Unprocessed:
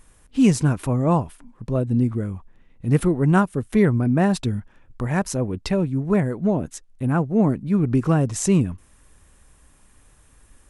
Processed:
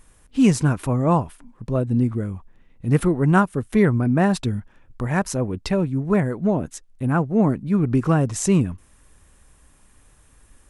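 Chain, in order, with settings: dynamic bell 1.3 kHz, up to +3 dB, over -34 dBFS, Q 0.9

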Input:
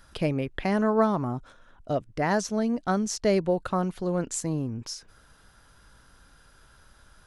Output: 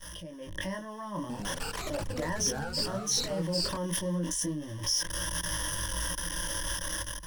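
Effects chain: jump at every zero crossing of -33 dBFS; peak limiter -21 dBFS, peak gain reduction 10 dB; chorus 0.39 Hz, delay 17.5 ms, depth 6.8 ms; level held to a coarse grid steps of 21 dB; peaking EQ 9.1 kHz +6 dB 1.7 oct; level rider gain up to 11 dB; rippled EQ curve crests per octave 1.2, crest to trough 18 dB; 1.19–3.77 s: ever faster or slower copies 103 ms, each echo -3 st, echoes 2; trim -7 dB

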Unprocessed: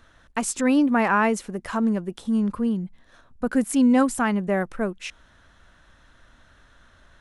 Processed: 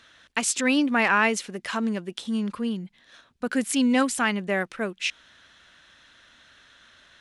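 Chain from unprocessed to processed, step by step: frequency weighting D; trim -2.5 dB

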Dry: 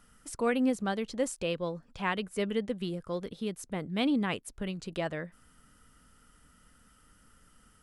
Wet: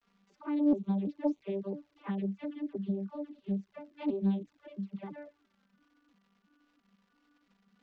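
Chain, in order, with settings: vocoder on a broken chord bare fifth, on G3, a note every 337 ms; 1.02–3.32 s: peaking EQ 480 Hz +12 dB 0.34 oct; phase dispersion lows, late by 57 ms, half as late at 570 Hz; crackle 220 per s -51 dBFS; touch-sensitive flanger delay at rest 4.3 ms, full sweep at -28.5 dBFS; distance through air 170 m; loudspeaker Doppler distortion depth 0.37 ms

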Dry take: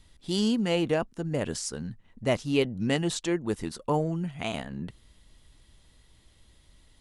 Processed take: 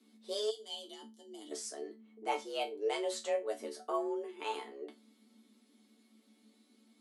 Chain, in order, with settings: frequency shift +210 Hz; chord resonator D3 major, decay 0.22 s; time-frequency box 0.50–1.52 s, 350–2900 Hz -20 dB; trim +4.5 dB

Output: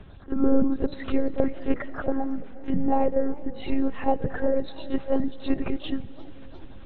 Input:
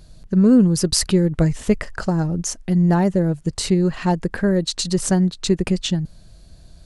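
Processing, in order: coarse spectral quantiser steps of 30 dB; high-pass 88 Hz 12 dB/octave; upward compressor, threshold -29 dBFS; peaking EQ 130 Hz -12.5 dB 0.66 oct; reverse echo 34 ms -12 dB; monotone LPC vocoder at 8 kHz 270 Hz; low-pass 1.5 kHz 6 dB/octave; reverberation RT60 5.6 s, pre-delay 84 ms, DRR 18.5 dB; modulated delay 346 ms, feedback 74%, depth 167 cents, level -23.5 dB; trim -2 dB

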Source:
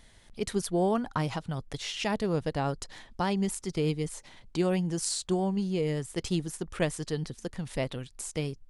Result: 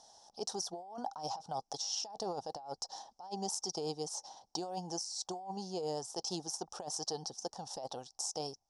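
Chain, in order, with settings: two resonant band-passes 2.1 kHz, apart 2.8 oct; compressor with a negative ratio -49 dBFS, ratio -1; trim +9 dB

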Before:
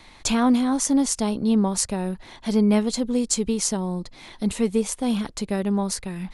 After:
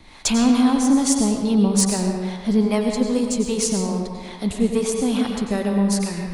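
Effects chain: saturation -10.5 dBFS, distortion -23 dB; harmonic tremolo 2.4 Hz, depth 70%, crossover 430 Hz; on a send: reverberation RT60 1.6 s, pre-delay 88 ms, DRR 2 dB; on the sum: trim +5.5 dB

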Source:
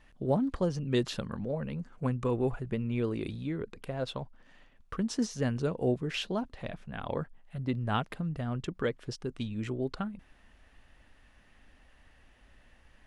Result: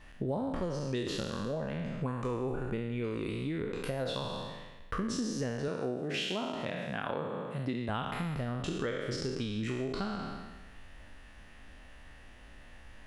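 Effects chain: spectral sustain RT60 1.16 s; 5.68–7.89 s: high-pass 150 Hz 12 dB/octave; compression 6:1, threshold -36 dBFS, peak gain reduction 14 dB; trim +4.5 dB

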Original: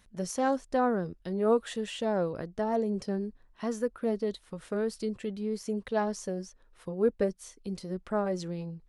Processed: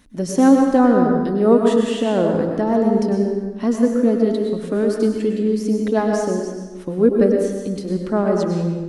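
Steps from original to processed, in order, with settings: peaking EQ 280 Hz +14 dB 0.61 oct; reverberation RT60 1.3 s, pre-delay 93 ms, DRR 1.5 dB; trim +7 dB

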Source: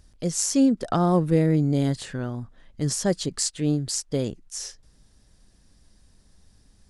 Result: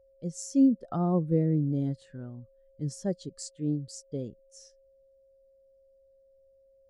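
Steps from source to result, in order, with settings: whistle 540 Hz -43 dBFS; spectral contrast expander 1.5:1; trim -8.5 dB

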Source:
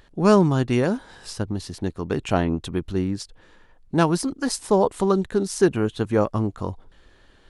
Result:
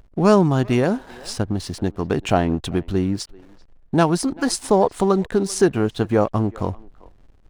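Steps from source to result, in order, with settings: peaking EQ 720 Hz +5 dB 0.3 oct; in parallel at +1.5 dB: compression, threshold -25 dBFS, peak gain reduction 14.5 dB; on the sum: hysteresis with a dead band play -38 dBFS; speakerphone echo 390 ms, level -22 dB; trim -1 dB

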